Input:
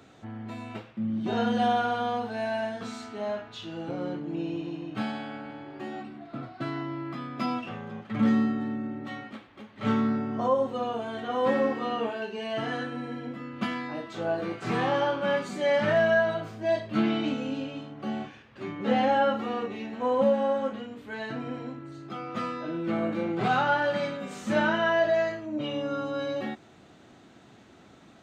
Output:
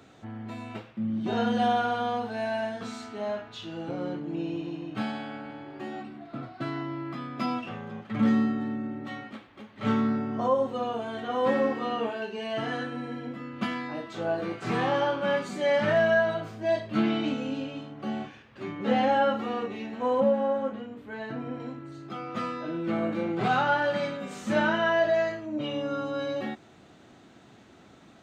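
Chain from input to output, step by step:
0:20.20–0:21.60: parametric band 6,900 Hz −8.5 dB 3 octaves

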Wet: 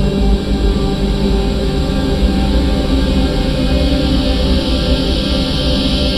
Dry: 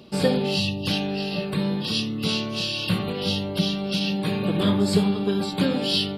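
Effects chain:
sub-octave generator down 2 octaves, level +4 dB
extreme stretch with random phases 11×, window 1.00 s, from 0:05.30
level +6.5 dB

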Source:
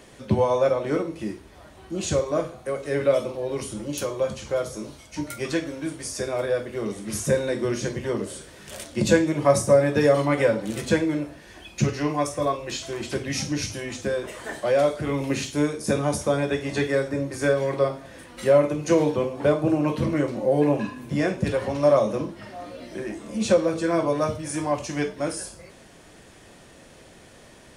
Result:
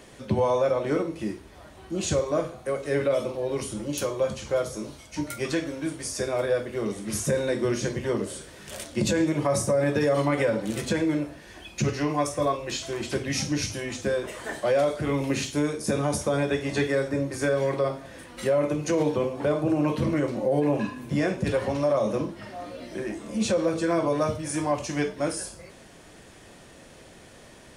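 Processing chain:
brickwall limiter −15 dBFS, peak gain reduction 10 dB

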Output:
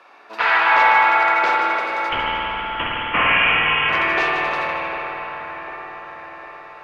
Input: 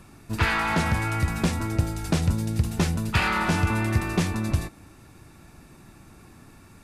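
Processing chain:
high-pass filter 540 Hz 24 dB per octave
in parallel at −10 dB: hard clipping −27.5 dBFS, distortion −9 dB
0:02.09–0:03.89: on the sum: voice inversion scrambler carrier 3,700 Hz
high-frequency loss of the air 270 metres
on a send: echo with a time of its own for lows and highs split 2,000 Hz, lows 751 ms, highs 153 ms, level −9 dB
on the sum: spring reverb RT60 3 s, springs 51 ms, chirp 40 ms, DRR −3 dB
level +7 dB

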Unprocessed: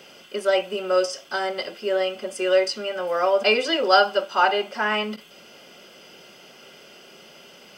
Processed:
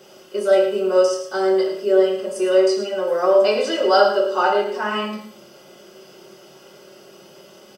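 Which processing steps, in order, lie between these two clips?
parametric band 2,500 Hz −8.5 dB 1.3 octaves
single-tap delay 108 ms −10 dB
convolution reverb RT60 0.55 s, pre-delay 3 ms, DRR −2 dB
level −1 dB

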